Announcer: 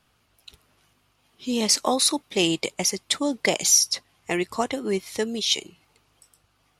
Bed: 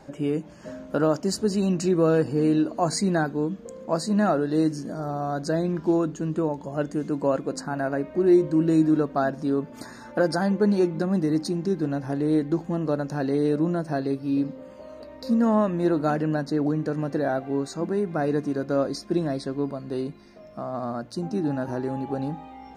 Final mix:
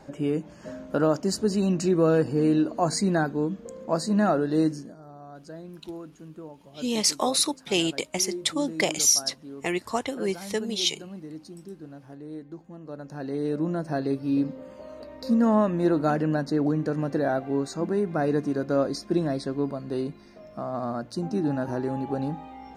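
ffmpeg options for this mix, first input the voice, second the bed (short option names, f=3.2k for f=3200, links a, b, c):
-filter_complex "[0:a]adelay=5350,volume=-2.5dB[a];[1:a]volume=16dB,afade=t=out:st=4.65:d=0.31:silence=0.158489,afade=t=in:st=12.83:d=1.33:silence=0.149624[b];[a][b]amix=inputs=2:normalize=0"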